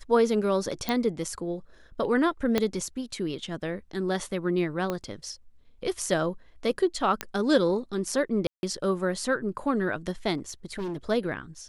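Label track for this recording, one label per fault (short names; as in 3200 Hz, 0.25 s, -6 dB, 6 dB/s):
0.890000	0.890000	pop -12 dBFS
2.580000	2.580000	pop -10 dBFS
4.900000	4.900000	pop -16 dBFS
7.210000	7.210000	pop -11 dBFS
8.470000	8.630000	gap 0.161 s
10.370000	10.970000	clipped -29 dBFS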